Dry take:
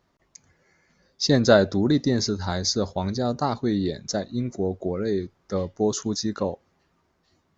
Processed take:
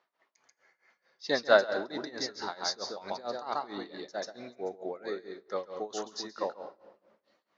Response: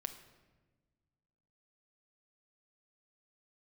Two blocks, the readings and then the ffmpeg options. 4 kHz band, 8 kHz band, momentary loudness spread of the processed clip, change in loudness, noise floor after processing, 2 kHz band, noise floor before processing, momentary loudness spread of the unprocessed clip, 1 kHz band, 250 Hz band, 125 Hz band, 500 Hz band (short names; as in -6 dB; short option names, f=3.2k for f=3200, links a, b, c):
-7.5 dB, n/a, 16 LU, -9.0 dB, -80 dBFS, -1.5 dB, -69 dBFS, 11 LU, -4.0 dB, -18.5 dB, -28.5 dB, -7.0 dB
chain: -filter_complex "[0:a]highpass=660,lowpass=3.6k,asplit=2[a][b];[1:a]atrim=start_sample=2205,adelay=137[c];[b][c]afir=irnorm=-1:irlink=0,volume=-2dB[d];[a][d]amix=inputs=2:normalize=0,tremolo=f=4.5:d=0.89"